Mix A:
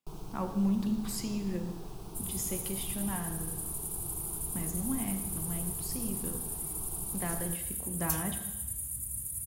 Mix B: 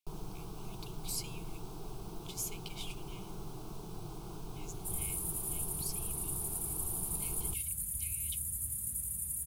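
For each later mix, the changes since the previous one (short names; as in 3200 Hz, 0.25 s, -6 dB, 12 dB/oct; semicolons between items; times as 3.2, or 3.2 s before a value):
speech: add brick-wall FIR high-pass 2100 Hz; second sound: entry +2.70 s; reverb: off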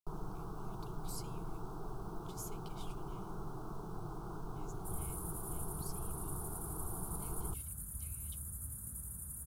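master: add resonant high shelf 1800 Hz -9 dB, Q 3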